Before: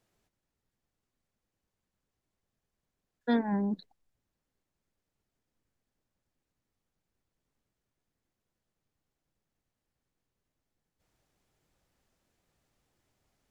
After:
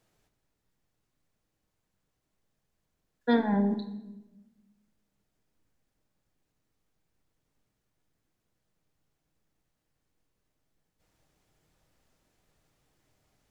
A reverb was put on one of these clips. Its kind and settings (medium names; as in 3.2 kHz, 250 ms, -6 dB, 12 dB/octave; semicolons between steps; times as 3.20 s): simulated room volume 540 m³, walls mixed, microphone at 0.54 m; trim +3.5 dB